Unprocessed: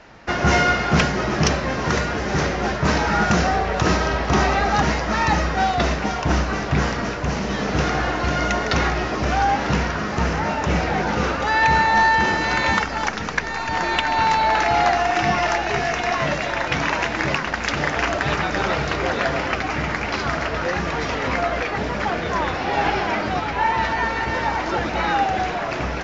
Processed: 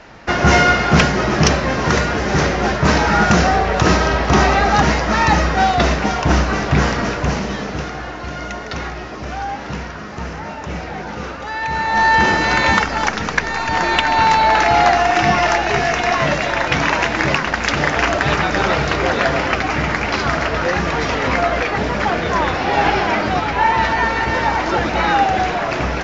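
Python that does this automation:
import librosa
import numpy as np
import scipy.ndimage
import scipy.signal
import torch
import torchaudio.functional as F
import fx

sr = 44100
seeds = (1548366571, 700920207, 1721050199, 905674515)

y = fx.gain(x, sr, db=fx.line((7.28, 5.0), (7.91, -6.0), (11.67, -6.0), (12.17, 5.0)))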